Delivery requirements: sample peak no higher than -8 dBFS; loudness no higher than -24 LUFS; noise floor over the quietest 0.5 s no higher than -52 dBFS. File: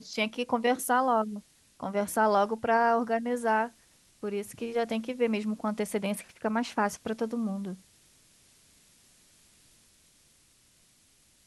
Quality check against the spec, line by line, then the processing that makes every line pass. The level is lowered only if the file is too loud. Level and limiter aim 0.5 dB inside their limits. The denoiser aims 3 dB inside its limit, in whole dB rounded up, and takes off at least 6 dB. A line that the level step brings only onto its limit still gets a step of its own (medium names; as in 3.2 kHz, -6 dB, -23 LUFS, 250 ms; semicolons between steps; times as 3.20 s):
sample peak -13.5 dBFS: pass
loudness -29.5 LUFS: pass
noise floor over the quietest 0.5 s -64 dBFS: pass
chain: none needed